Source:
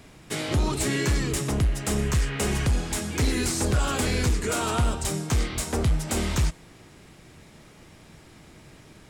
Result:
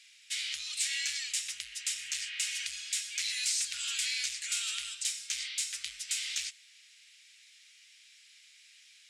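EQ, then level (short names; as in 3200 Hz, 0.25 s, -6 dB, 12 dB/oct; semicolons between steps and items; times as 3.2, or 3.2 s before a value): inverse Chebyshev high-pass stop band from 880 Hz, stop band 50 dB; air absorption 83 m; high shelf 5000 Hz +9.5 dB; 0.0 dB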